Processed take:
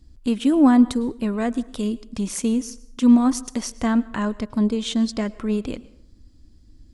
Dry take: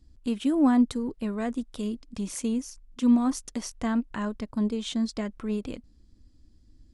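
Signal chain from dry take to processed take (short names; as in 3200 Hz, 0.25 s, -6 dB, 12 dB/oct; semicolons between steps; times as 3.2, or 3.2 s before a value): plate-style reverb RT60 0.65 s, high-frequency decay 0.7×, pre-delay 95 ms, DRR 19.5 dB; gain +6.5 dB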